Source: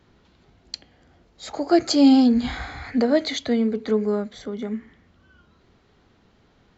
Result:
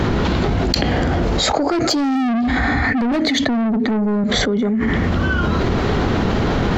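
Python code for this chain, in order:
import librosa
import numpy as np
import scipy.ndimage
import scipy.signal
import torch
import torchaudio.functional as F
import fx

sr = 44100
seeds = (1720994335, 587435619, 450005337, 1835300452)

y = fx.high_shelf(x, sr, hz=2300.0, db=-9.0)
y = np.clip(y, -10.0 ** (-17.0 / 20.0), 10.0 ** (-17.0 / 20.0))
y = fx.small_body(y, sr, hz=(240.0, 1800.0), ring_ms=35, db=13, at=(2.15, 4.24))
y = 10.0 ** (-20.0 / 20.0) * np.tanh(y / 10.0 ** (-20.0 / 20.0))
y = fx.env_flatten(y, sr, amount_pct=100)
y = y * 10.0 ** (3.0 / 20.0)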